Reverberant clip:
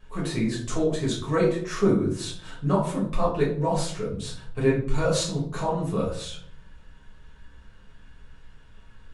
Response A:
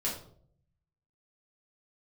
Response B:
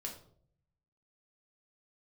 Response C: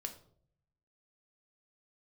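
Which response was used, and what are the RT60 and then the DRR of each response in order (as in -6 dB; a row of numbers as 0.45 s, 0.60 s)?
A; 0.60 s, 0.60 s, 0.60 s; -6.5 dB, -0.5 dB, 5.0 dB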